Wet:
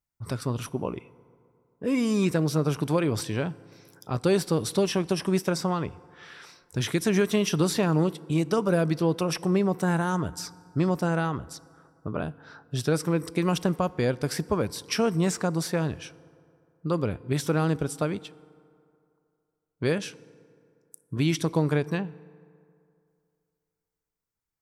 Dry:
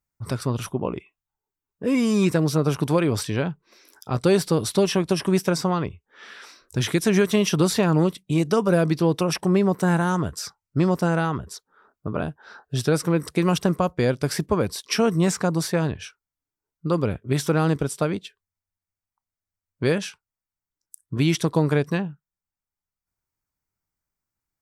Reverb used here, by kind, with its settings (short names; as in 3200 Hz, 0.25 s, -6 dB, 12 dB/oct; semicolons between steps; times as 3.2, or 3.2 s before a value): FDN reverb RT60 2.5 s, low-frequency decay 0.9×, high-frequency decay 0.5×, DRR 19.5 dB; gain -4 dB